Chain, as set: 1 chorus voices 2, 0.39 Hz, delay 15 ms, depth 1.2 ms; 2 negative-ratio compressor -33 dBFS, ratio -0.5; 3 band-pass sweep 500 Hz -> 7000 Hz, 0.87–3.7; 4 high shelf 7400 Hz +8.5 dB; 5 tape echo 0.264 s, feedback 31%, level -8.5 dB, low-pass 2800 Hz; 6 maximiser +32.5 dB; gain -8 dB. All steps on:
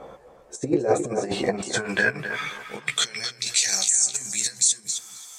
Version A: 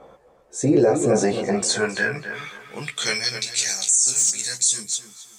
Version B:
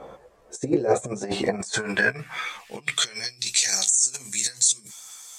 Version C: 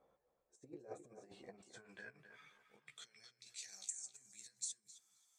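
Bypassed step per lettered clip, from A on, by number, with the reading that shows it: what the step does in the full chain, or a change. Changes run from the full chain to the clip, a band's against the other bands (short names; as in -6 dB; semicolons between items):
2, crest factor change -3.0 dB; 5, momentary loudness spread change +2 LU; 6, crest factor change +9.5 dB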